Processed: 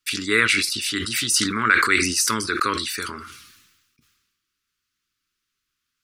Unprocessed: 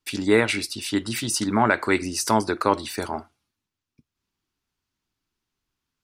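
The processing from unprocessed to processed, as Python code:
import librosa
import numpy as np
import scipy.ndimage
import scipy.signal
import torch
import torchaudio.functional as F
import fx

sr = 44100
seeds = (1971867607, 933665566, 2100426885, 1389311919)

y = fx.curve_eq(x, sr, hz=(470.0, 740.0, 1200.0), db=(0, -26, 12))
y = fx.sustainer(y, sr, db_per_s=47.0)
y = y * 10.0 ** (-6.5 / 20.0)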